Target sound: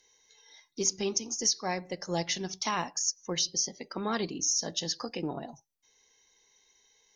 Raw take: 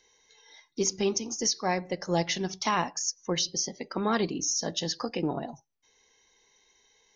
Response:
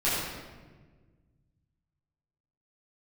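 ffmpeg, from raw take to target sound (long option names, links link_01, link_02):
-af "aemphasis=mode=production:type=cd,volume=-4.5dB"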